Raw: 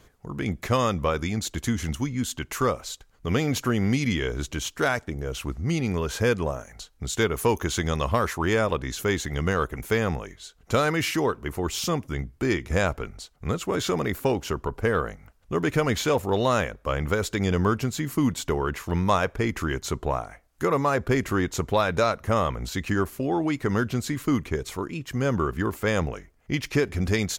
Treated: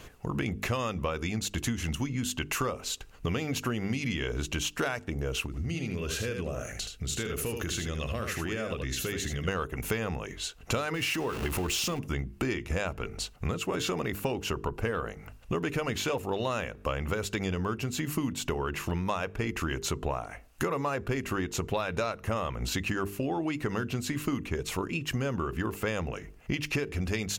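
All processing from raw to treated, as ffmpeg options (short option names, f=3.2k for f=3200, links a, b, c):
-filter_complex "[0:a]asettb=1/sr,asplit=3[a][b][c];[a]atrim=end=5.464[d];[b]atrim=start=5.46:end=9.48,asetpts=PTS-STARTPTS,afade=t=in:d=0.004:c=qsin,afade=t=out:st=4.016:d=0.004:c=qsin,equalizer=f=940:t=o:w=0.47:g=-13.5,acompressor=threshold=-38dB:ratio=3:attack=3.2:release=140:knee=1:detection=peak,aecho=1:1:77:0.473,atrim=end_sample=177282[e];[c]atrim=start=9.476[f];[d][e]acrossfade=d=0.004:c1=hsin:c2=qsin[g];[g][f]acrossfade=d=0.004:c1=qsin:c2=hsin,asettb=1/sr,asplit=3[h][i][j];[h]atrim=end=10.944[k];[i]atrim=start=10.94:end=11.99,asetpts=PTS-STARTPTS,afade=t=in:d=0.004:c=qsin,afade=t=out:st=1.046:d=0.004:c=qsin,aeval=exprs='val(0)+0.5*0.0282*sgn(val(0))':c=same,acompressor=threshold=-25dB:ratio=2.5:attack=3.2:release=140:knee=1:detection=peak[l];[j]atrim=start=11.986[m];[k][l]acrossfade=d=0.004:c1=hsin:c2=qsin[n];[n][m]acrossfade=d=0.004:c1=qsin:c2=hsin,equalizer=f=2.7k:w=7.3:g=10.5,bandreject=f=50:t=h:w=6,bandreject=f=100:t=h:w=6,bandreject=f=150:t=h:w=6,bandreject=f=200:t=h:w=6,bandreject=f=250:t=h:w=6,bandreject=f=300:t=h:w=6,bandreject=f=350:t=h:w=6,bandreject=f=400:t=h:w=6,bandreject=f=450:t=h:w=6,acompressor=threshold=-36dB:ratio=6,volume=7.5dB"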